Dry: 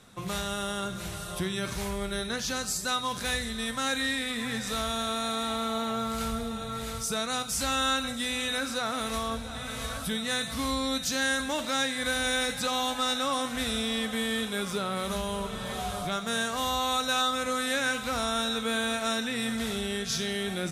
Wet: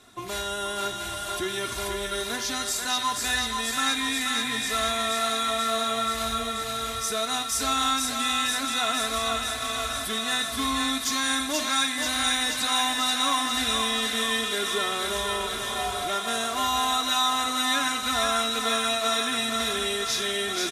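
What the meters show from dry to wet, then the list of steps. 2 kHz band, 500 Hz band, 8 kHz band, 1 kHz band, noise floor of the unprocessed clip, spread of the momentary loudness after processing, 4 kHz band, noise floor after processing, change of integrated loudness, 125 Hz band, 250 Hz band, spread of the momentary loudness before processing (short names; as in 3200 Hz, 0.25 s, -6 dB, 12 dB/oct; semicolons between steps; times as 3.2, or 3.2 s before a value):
+3.0 dB, +1.5 dB, +5.5 dB, +5.0 dB, -37 dBFS, 6 LU, +5.5 dB, -32 dBFS, +4.5 dB, -5.0 dB, -1.0 dB, 6 LU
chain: low shelf 77 Hz -10.5 dB; comb 2.9 ms, depth 82%; thinning echo 0.483 s, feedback 76%, high-pass 720 Hz, level -3 dB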